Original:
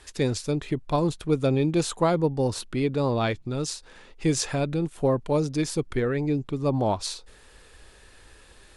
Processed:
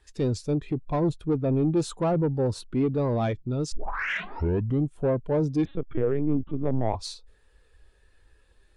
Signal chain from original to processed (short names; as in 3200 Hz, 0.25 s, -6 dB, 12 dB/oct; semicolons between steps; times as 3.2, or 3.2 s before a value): 3.72 tape start 1.24 s; soft clip -24.5 dBFS, distortion -10 dB; 1.37–1.77 air absorption 180 m; 5.65–6.95 LPC vocoder at 8 kHz pitch kept; spectral expander 1.5:1; gain +3 dB